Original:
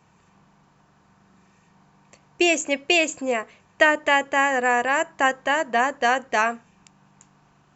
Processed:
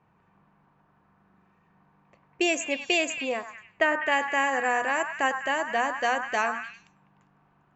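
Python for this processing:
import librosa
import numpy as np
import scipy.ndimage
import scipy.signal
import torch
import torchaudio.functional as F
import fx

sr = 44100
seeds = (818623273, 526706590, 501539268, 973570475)

y = fx.hum_notches(x, sr, base_hz=60, count=4)
y = fx.echo_stepped(y, sr, ms=100, hz=1200.0, octaves=0.7, feedback_pct=70, wet_db=-4.5)
y = fx.env_lowpass(y, sr, base_hz=2000.0, full_db=-20.0)
y = fx.high_shelf(y, sr, hz=3500.0, db=-8.0, at=(3.29, 4.12))
y = y * 10.0 ** (-5.5 / 20.0)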